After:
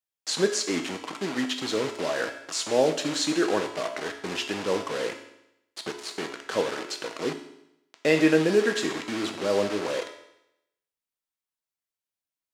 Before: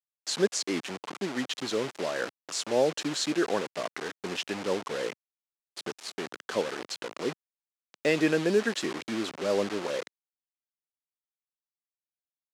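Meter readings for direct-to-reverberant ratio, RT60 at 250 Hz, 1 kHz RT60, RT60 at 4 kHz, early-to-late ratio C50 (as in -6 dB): 4.0 dB, 0.85 s, 0.85 s, 0.80 s, 8.5 dB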